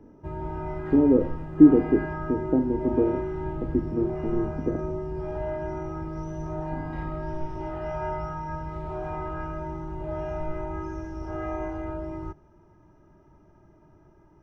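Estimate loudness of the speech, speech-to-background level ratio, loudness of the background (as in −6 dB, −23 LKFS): −23.5 LKFS, 10.0 dB, −33.5 LKFS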